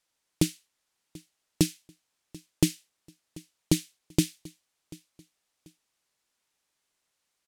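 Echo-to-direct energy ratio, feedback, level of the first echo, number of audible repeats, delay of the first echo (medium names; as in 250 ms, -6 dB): -21.5 dB, 33%, -22.0 dB, 2, 738 ms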